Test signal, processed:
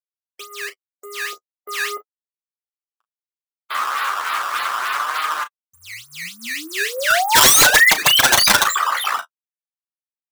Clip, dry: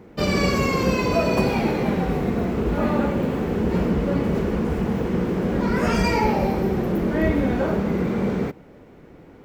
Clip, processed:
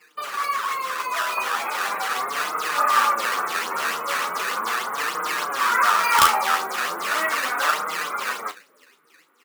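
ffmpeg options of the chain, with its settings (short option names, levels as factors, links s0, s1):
-filter_complex "[0:a]volume=5.62,asoftclip=hard,volume=0.178,highshelf=f=5500:t=q:w=1.5:g=-10.5,alimiter=limit=0.0631:level=0:latency=1:release=56,dynaudnorm=f=360:g=9:m=2.51,acrusher=bits=11:mix=0:aa=0.000001,afftdn=nr=18:nf=-35,acrusher=samples=12:mix=1:aa=0.000001:lfo=1:lforange=19.2:lforate=3.4,highpass=f=1200:t=q:w=4.9,aeval=exprs='(mod(2.99*val(0)+1,2)-1)/2.99':c=same,flanger=delay=6.4:depth=6.6:regen=19:speed=0.38:shape=sinusoidal,asplit=2[s0][s1];[s1]adelay=35,volume=0.251[s2];[s0][s2]amix=inputs=2:normalize=0,volume=2.37"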